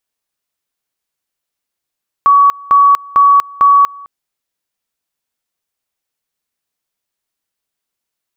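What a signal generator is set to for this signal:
tone at two levels in turn 1,130 Hz −4 dBFS, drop 25 dB, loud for 0.24 s, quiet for 0.21 s, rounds 4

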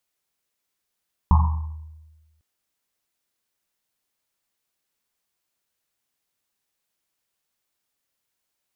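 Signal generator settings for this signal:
drum after Risset, pitch 78 Hz, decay 1.28 s, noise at 970 Hz, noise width 290 Hz, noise 20%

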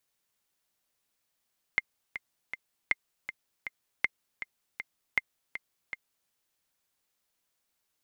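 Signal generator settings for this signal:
click track 159 BPM, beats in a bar 3, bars 4, 2,100 Hz, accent 11.5 dB −11 dBFS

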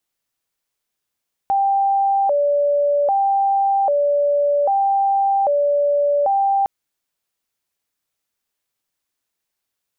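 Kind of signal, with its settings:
siren hi-lo 577–789 Hz 0.63 per second sine −14 dBFS 5.16 s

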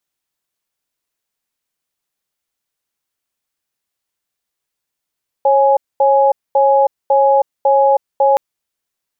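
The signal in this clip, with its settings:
tone pair in a cadence 547 Hz, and 834 Hz, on 0.32 s, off 0.23 s, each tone −11 dBFS 2.92 s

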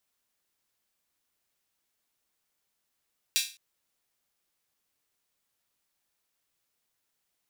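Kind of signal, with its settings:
open synth hi-hat length 0.21 s, high-pass 3,100 Hz, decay 0.34 s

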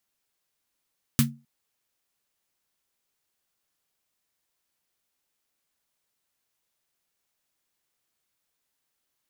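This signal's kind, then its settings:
synth snare length 0.26 s, tones 140 Hz, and 230 Hz, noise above 1,100 Hz, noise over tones −3 dB, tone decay 0.30 s, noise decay 0.13 s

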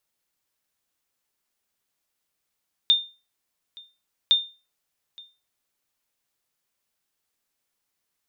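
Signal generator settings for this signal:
ping with an echo 3,620 Hz, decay 0.31 s, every 1.41 s, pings 2, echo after 0.87 s, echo −25.5 dB −10.5 dBFS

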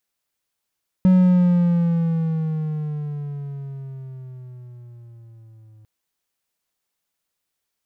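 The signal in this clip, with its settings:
pitch glide with a swell triangle, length 4.80 s, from 186 Hz, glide −9.5 semitones, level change −35.5 dB, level −8 dB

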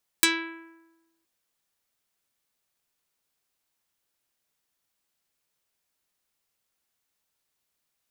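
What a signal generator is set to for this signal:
Karplus-Strong string E4, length 1.02 s, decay 1.13 s, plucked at 0.47, dark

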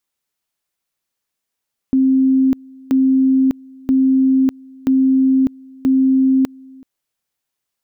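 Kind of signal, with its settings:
tone at two levels in turn 264 Hz −10 dBFS, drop 26.5 dB, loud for 0.60 s, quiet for 0.38 s, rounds 5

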